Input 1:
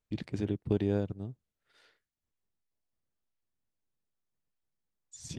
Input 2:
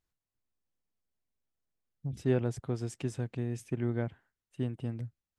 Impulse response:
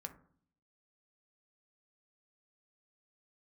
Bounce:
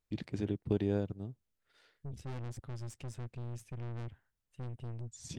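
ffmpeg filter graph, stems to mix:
-filter_complex "[0:a]volume=-2.5dB[link_01];[1:a]asubboost=boost=4.5:cutoff=120,aeval=exprs='(tanh(70.8*val(0)+0.65)-tanh(0.65))/70.8':channel_layout=same,volume=-2.5dB[link_02];[link_01][link_02]amix=inputs=2:normalize=0"

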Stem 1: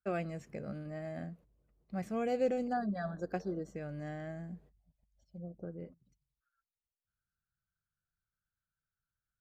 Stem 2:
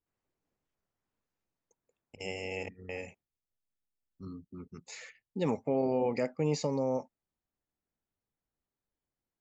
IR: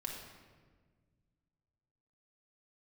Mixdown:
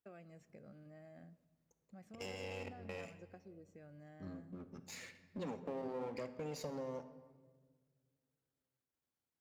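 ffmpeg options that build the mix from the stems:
-filter_complex "[0:a]acompressor=threshold=-40dB:ratio=6,volume=-13.5dB,asplit=2[link_01][link_02];[link_02]volume=-16dB[link_03];[1:a]aeval=exprs='if(lt(val(0),0),0.251*val(0),val(0))':channel_layout=same,acompressor=threshold=-41dB:ratio=3,volume=-3dB,asplit=2[link_04][link_05];[link_05]volume=-5dB[link_06];[2:a]atrim=start_sample=2205[link_07];[link_03][link_06]amix=inputs=2:normalize=0[link_08];[link_08][link_07]afir=irnorm=-1:irlink=0[link_09];[link_01][link_04][link_09]amix=inputs=3:normalize=0,highpass=80"

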